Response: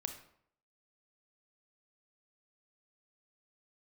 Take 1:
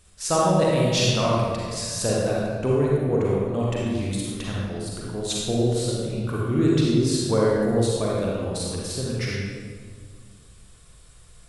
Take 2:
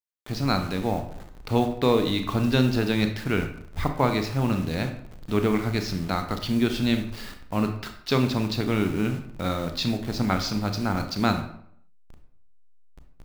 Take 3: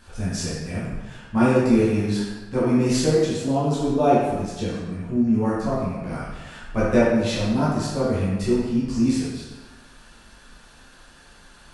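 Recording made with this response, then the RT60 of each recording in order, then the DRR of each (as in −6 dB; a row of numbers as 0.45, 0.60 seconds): 2; 1.8, 0.65, 1.2 seconds; −5.0, 6.0, −9.0 decibels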